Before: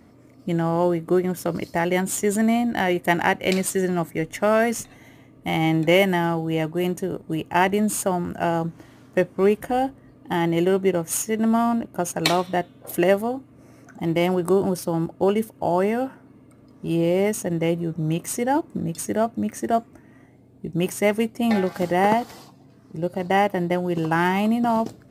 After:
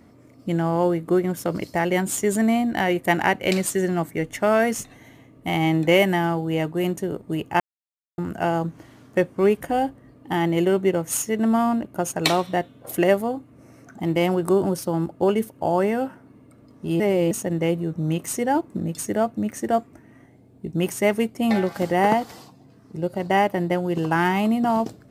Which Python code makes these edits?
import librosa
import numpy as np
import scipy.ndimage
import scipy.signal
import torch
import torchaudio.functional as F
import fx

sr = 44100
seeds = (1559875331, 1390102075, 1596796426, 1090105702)

y = fx.edit(x, sr, fx.silence(start_s=7.6, length_s=0.58),
    fx.reverse_span(start_s=17.0, length_s=0.31), tone=tone)